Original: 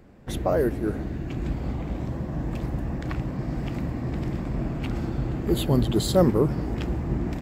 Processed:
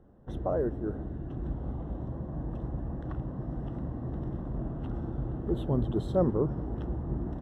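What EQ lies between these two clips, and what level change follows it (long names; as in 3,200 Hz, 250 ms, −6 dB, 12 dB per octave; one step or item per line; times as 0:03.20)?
moving average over 19 samples
parametric band 210 Hz −2.5 dB 1.5 octaves
−5.0 dB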